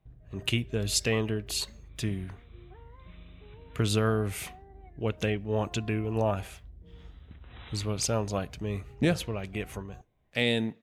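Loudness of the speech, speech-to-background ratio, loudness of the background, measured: -30.5 LUFS, 20.0 dB, -50.5 LUFS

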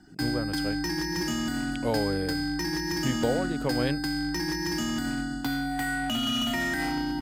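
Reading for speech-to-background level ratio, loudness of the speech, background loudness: -3.0 dB, -32.0 LUFS, -29.0 LUFS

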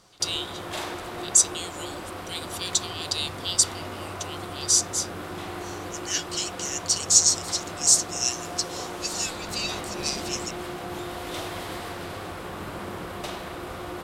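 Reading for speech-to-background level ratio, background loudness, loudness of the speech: 11.5 dB, -35.5 LUFS, -24.0 LUFS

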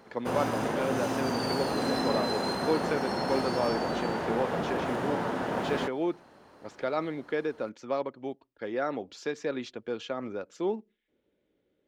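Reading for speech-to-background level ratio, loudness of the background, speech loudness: -3.0 dB, -31.0 LUFS, -34.0 LUFS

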